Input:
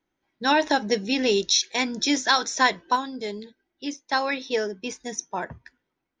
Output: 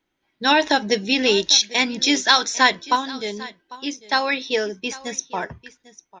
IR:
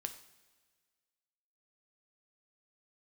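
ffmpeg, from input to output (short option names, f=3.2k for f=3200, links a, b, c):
-filter_complex "[0:a]equalizer=f=3.1k:w=1:g=5.5,asplit=2[a][b];[b]aecho=0:1:798:0.112[c];[a][c]amix=inputs=2:normalize=0,volume=2.5dB"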